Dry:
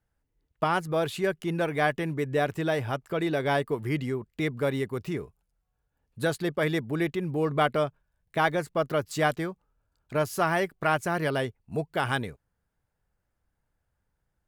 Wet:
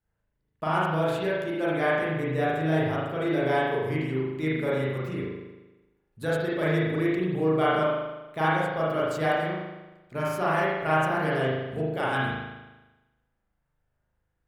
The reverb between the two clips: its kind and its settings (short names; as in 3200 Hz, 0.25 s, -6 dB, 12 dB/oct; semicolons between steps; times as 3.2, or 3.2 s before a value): spring tank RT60 1.1 s, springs 38 ms, chirp 55 ms, DRR -7.5 dB; gain -7 dB